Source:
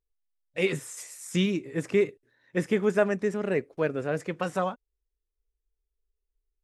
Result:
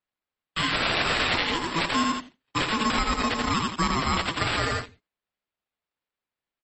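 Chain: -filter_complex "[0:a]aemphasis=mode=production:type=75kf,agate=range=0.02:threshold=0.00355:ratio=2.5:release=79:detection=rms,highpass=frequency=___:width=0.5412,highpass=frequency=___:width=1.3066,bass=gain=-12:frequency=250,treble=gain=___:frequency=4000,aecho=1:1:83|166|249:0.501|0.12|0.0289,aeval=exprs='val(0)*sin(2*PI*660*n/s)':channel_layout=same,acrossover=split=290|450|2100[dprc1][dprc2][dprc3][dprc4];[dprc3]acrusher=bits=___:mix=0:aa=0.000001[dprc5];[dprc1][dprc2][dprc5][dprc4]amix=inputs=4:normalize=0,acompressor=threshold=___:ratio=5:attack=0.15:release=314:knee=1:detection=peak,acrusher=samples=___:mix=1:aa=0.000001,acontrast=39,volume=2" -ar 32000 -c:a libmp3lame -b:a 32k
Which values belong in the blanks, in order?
190, 190, 13, 7, 0.0398, 7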